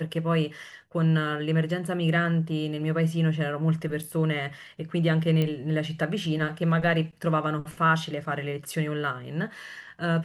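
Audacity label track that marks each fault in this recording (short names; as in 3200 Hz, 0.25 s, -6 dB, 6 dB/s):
5.420000	5.420000	pop -15 dBFS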